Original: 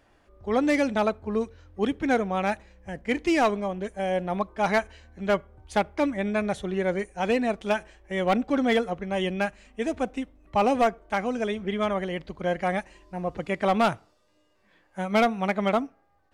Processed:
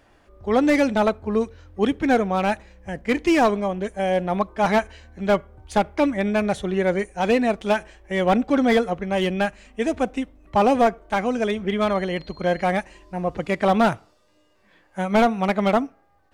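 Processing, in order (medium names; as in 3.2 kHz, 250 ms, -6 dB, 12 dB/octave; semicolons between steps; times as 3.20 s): 11.81–12.62 s: whistle 4.2 kHz -54 dBFS; slew-rate limiter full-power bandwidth 110 Hz; trim +5 dB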